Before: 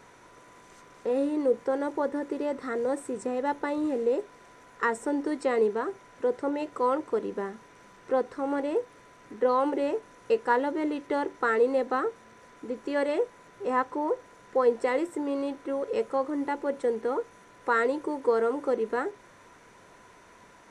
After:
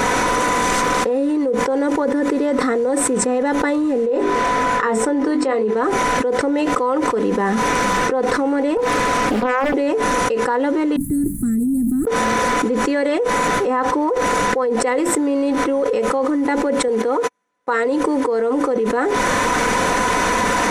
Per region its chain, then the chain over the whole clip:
4.06–5.75 s: low-pass 3.8 kHz 6 dB/octave + hum notches 50/100/150/200/250/300/350/400/450 Hz + doubling 23 ms -8 dB
8.77–9.74 s: compression 2:1, threshold -37 dBFS + loudspeaker Doppler distortion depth 0.97 ms
10.96–12.07 s: inverse Chebyshev band-stop 470–5800 Hz, stop band 50 dB + treble shelf 2.6 kHz +11.5 dB
16.88–17.85 s: high-pass 220 Hz 6 dB/octave + gate -45 dBFS, range -57 dB
whole clip: comb 4 ms, depth 47%; level flattener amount 100%; trim -3 dB

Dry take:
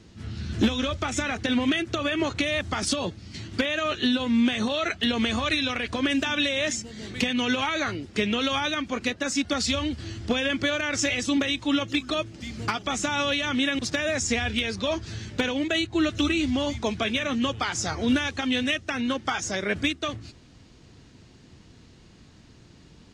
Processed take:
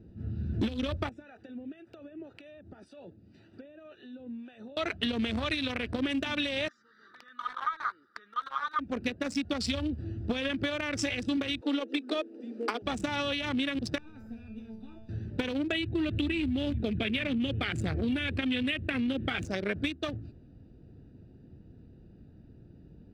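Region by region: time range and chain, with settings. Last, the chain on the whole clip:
1.09–4.77 s: high-pass 560 Hz 6 dB/octave + compression 3:1, threshold -36 dBFS + harmonic tremolo 1.9 Hz, crossover 550 Hz
6.68–8.79 s: compression 10:1, threshold -30 dBFS + resonant high-pass 1.2 kHz, resonance Q 15 + static phaser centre 2.6 kHz, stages 6
11.61–12.82 s: steep high-pass 220 Hz 96 dB/octave + peaking EQ 470 Hz +14 dB 0.28 oct
13.98–15.09 s: comb filter that takes the minimum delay 0.82 ms + feedback comb 220 Hz, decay 0.52 s, mix 90% + three bands compressed up and down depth 70%
15.72–19.45 s: static phaser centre 2.4 kHz, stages 4 + level flattener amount 50%
whole clip: local Wiener filter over 41 samples; peaking EQ 6.7 kHz -12 dB 0.21 oct; compression, threshold -27 dBFS

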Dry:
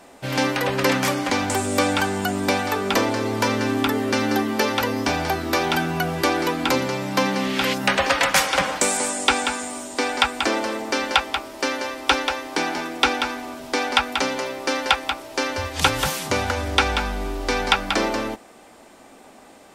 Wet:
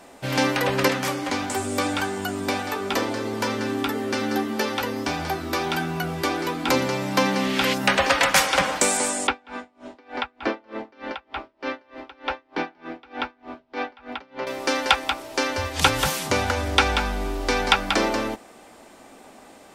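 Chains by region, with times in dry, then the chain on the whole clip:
0.88–6.68 s: flange 1.6 Hz, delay 4.8 ms, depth 3.7 ms, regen -79% + doubling 13 ms -10.5 dB
9.27–14.47 s: distance through air 300 m + logarithmic tremolo 3.3 Hz, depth 31 dB
whole clip: none

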